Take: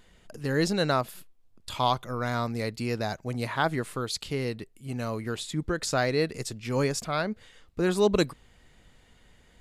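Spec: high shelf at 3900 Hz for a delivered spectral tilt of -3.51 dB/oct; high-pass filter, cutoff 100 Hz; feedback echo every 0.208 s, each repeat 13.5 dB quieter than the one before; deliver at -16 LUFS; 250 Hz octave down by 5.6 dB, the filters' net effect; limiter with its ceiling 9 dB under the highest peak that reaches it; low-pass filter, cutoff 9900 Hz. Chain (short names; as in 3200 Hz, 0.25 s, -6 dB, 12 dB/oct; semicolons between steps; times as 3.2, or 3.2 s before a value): HPF 100 Hz; LPF 9900 Hz; bell 250 Hz -8 dB; high shelf 3900 Hz +6.5 dB; limiter -18.5 dBFS; feedback echo 0.208 s, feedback 21%, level -13.5 dB; gain +16 dB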